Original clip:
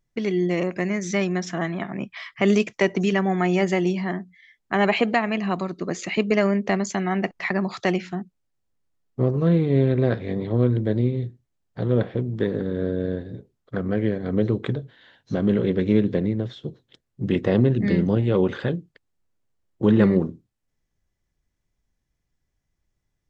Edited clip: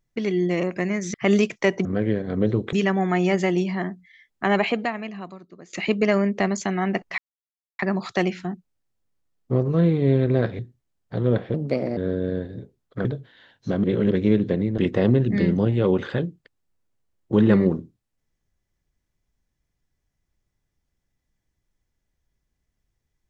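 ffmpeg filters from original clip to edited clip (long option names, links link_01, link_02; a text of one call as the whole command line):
ffmpeg -i in.wav -filter_complex "[0:a]asplit=13[link_01][link_02][link_03][link_04][link_05][link_06][link_07][link_08][link_09][link_10][link_11][link_12][link_13];[link_01]atrim=end=1.142[link_14];[link_02]atrim=start=2.308:end=3.022[link_15];[link_03]atrim=start=13.808:end=14.692[link_16];[link_04]atrim=start=3.018:end=6.02,asetpts=PTS-STARTPTS,afade=type=out:start_time=1.782:duration=1.22:curve=qua:silence=0.125893[link_17];[link_05]atrim=start=6.02:end=7.47,asetpts=PTS-STARTPTS,afade=type=in:duration=0.004:curve=hsin:silence=0.125893,afade=type=out:start_time=1.446:duration=0.004:curve=hsin,apad=pad_dur=0.61[link_18];[link_06]atrim=start=7.47:end=10.272,asetpts=PTS-STARTPTS,afade=type=in:duration=0.004:curve=hsin[link_19];[link_07]atrim=start=11.238:end=12.194[link_20];[link_08]atrim=start=12.19:end=12.73,asetpts=PTS-STARTPTS,asetrate=55566,aresample=44100[link_21];[link_09]atrim=start=12.726:end=13.812[link_22];[link_10]atrim=start=14.688:end=15.482[link_23];[link_11]atrim=start=15.478:end=15.752,asetpts=PTS-STARTPTS,areverse[link_24];[link_12]atrim=start=15.748:end=16.422[link_25];[link_13]atrim=start=17.278[link_26];[link_14][link_15]acrossfade=duration=0.004:curve1=hsin:curve2=hsin[link_27];[link_27][link_16]acrossfade=duration=0.004:curve1=hsin:curve2=hsin[link_28];[link_17][link_18][link_19]concat=n=3:v=0:a=1[link_29];[link_28][link_29]acrossfade=duration=0.004:curve1=hsin:curve2=hsin[link_30];[link_30][link_20]acrossfade=duration=0.004:curve1=hsin:curve2=hsin[link_31];[link_31][link_21]acrossfade=duration=0.004:curve1=hsin:curve2=hsin[link_32];[link_32][link_22]acrossfade=duration=0.004:curve1=hsin:curve2=hsin[link_33];[link_33][link_23]acrossfade=duration=0.004:curve1=hsin:curve2=hsin[link_34];[link_34][link_24]acrossfade=duration=0.004:curve1=hsin:curve2=hsin[link_35];[link_35][link_25]acrossfade=duration=0.004:curve1=hsin:curve2=hsin[link_36];[link_36][link_26]acrossfade=duration=0.004:curve1=hsin:curve2=hsin" out.wav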